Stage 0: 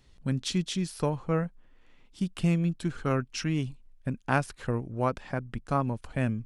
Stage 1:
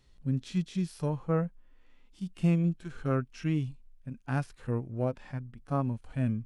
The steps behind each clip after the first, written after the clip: harmonic-percussive split percussive -17 dB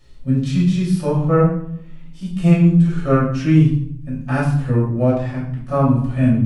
reverb RT60 0.70 s, pre-delay 3 ms, DRR -5.5 dB; gain +5.5 dB

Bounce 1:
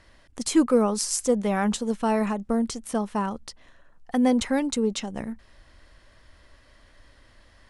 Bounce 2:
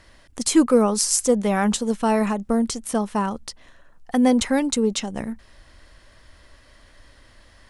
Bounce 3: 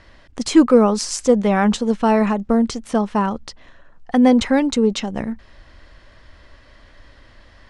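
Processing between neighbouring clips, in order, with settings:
high shelf 5600 Hz +4.5 dB; gain +3.5 dB
air absorption 110 m; gain +4.5 dB

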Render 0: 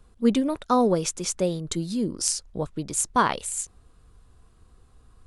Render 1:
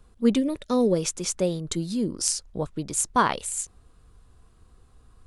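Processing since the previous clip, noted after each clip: spectral gain 0.39–0.96, 610–1700 Hz -10 dB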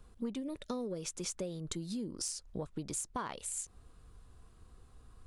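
soft clip -11 dBFS, distortion -22 dB; compressor 12:1, threshold -33 dBFS, peak gain reduction 17 dB; gain -2.5 dB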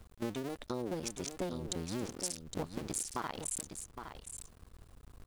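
cycle switcher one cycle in 2, muted; bit-crush 12-bit; on a send: echo 0.814 s -8.5 dB; on the sum: gain +3 dB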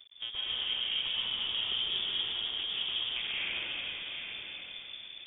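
plate-style reverb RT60 4.2 s, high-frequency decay 0.95×, pre-delay 0.105 s, DRR -9 dB; inverted band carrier 3500 Hz; gain -3 dB

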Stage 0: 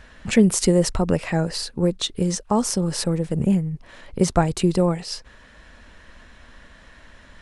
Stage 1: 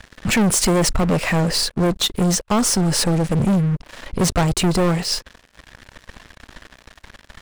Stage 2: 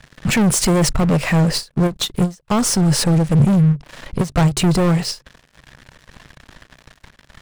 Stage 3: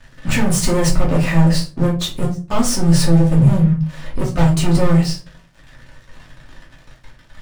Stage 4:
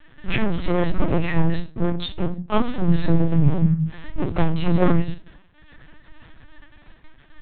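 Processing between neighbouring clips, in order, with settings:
sample leveller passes 5; gain -8 dB
bell 140 Hz +10 dB 0.45 oct; ending taper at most 280 dB/s
shoebox room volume 160 m³, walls furnished, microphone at 2.6 m; gain -7 dB
LPC vocoder at 8 kHz pitch kept; gain -3.5 dB

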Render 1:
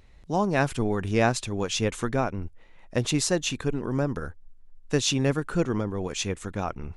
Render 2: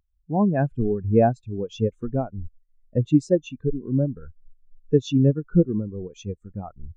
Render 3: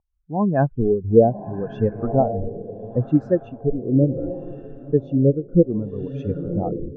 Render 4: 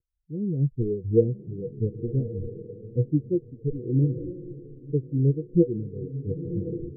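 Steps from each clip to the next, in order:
in parallel at +2.5 dB: compressor, threshold -33 dBFS, peak gain reduction 15.5 dB; on the sum: spectral expander 2.5:1; gain +1.5 dB
diffused feedback echo 1.022 s, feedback 41%, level -14 dB; AGC gain up to 12.5 dB; LFO low-pass sine 0.69 Hz 440–1600 Hz; gain -5 dB
rippled Chebyshev low-pass 500 Hz, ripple 9 dB; gain -1 dB

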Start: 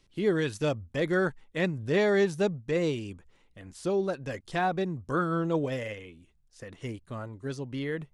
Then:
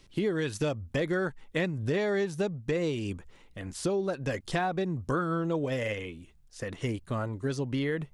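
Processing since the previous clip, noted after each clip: compressor 6:1, threshold -34 dBFS, peak gain reduction 13 dB; gain +7.5 dB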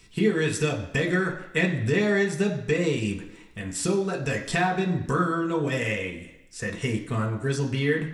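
reverb RT60 1.0 s, pre-delay 3 ms, DRR 0 dB; gain +6 dB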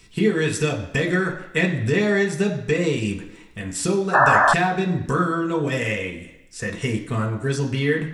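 painted sound noise, 4.13–4.54, 570–1800 Hz -18 dBFS; gain +3 dB

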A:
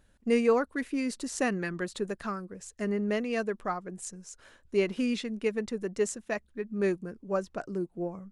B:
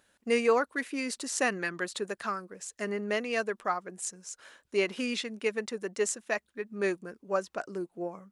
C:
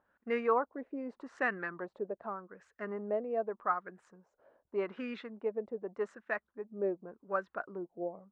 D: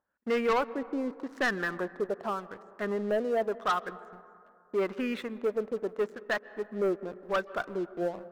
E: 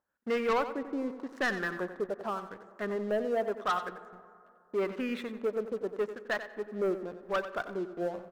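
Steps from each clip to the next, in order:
HPF 710 Hz 6 dB/oct; gain +4.5 dB
LFO low-pass sine 0.84 Hz 610–1600 Hz; dynamic EQ 3800 Hz, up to +6 dB, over -58 dBFS, Q 3.9; gain -7 dB
sample leveller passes 3; reverb RT60 2.5 s, pre-delay 0.119 s, DRR 18 dB; gain -3 dB
feedback echo 91 ms, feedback 18%, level -11.5 dB; gain -2 dB

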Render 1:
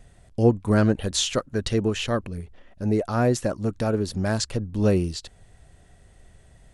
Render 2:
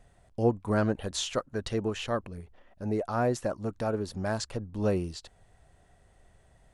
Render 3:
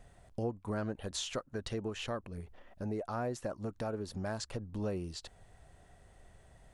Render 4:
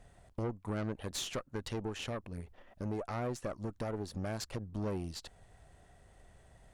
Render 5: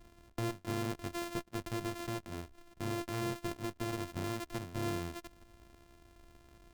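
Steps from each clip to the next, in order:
bell 880 Hz +7 dB 1.8 oct; gain -9 dB
compressor 2.5:1, threshold -40 dBFS, peak gain reduction 14 dB; gain +1.5 dB
tube stage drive 34 dB, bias 0.75; gain +4 dB
sample sorter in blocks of 128 samples

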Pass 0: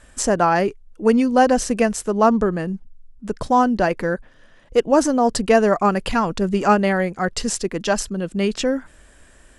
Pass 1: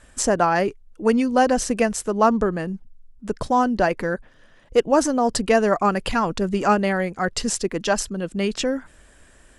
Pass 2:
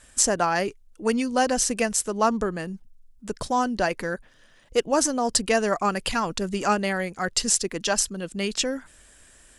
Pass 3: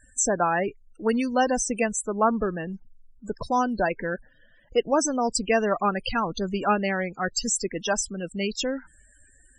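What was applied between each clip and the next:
harmonic-percussive split harmonic -3 dB
high shelf 2700 Hz +11.5 dB; gain -5.5 dB
loudest bins only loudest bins 32

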